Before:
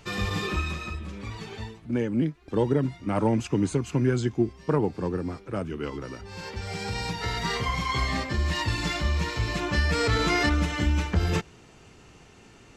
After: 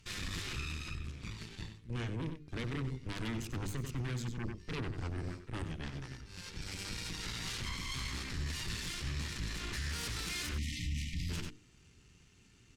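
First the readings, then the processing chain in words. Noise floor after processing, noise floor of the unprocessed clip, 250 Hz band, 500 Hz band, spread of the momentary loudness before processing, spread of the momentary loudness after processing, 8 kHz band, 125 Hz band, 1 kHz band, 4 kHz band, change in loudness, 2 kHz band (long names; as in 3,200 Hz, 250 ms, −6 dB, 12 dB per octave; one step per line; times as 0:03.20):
−63 dBFS, −52 dBFS, −15.5 dB, −19.5 dB, 12 LU, 7 LU, −3.5 dB, −11.0 dB, −17.5 dB, −7.5 dB, −12.5 dB, −12.0 dB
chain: harmonic generator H 8 −7 dB, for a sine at −11.5 dBFS
guitar amp tone stack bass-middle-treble 6-0-2
slap from a distant wall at 16 metres, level −11 dB
time-frequency box erased 0:10.58–0:11.29, 310–1,800 Hz
parametric band 370 Hz +2.5 dB 0.77 octaves
mains-hum notches 50/100/150/200/250/300/350/400/450 Hz
brickwall limiter −35.5 dBFS, peak gain reduction 12 dB
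level +6 dB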